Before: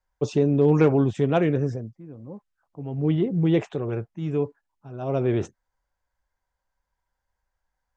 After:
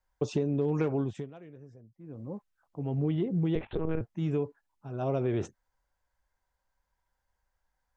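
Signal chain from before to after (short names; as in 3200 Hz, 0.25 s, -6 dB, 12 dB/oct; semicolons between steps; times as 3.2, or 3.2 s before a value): compressor 5:1, threshold -26 dBFS, peak gain reduction 12 dB; 1–2.2 dip -19.5 dB, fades 0.31 s; 3.55–4.01 monotone LPC vocoder at 8 kHz 160 Hz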